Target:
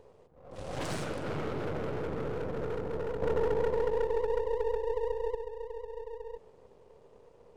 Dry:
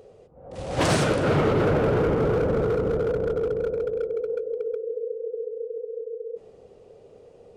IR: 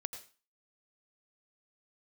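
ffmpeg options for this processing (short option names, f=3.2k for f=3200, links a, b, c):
-filter_complex "[0:a]aeval=exprs='if(lt(val(0),0),0.251*val(0),val(0))':c=same,alimiter=limit=-21.5dB:level=0:latency=1:release=179,asettb=1/sr,asplit=3[a][b][c];[a]atrim=end=3.224[d];[b]atrim=start=3.22:end=5.35,asetpts=PTS-STARTPTS,afade=t=in:d=0.004:c=qsin,afade=t=out:st=2.126:d=0.004:c=qsin,acontrast=65[e];[c]atrim=start=5.346[f];[d][e]acrossfade=d=0.004:c1=hsin:c2=qsin[g];[g][f]acrossfade=d=0.004:c1=qsin:c2=hsin,volume=-4.5dB"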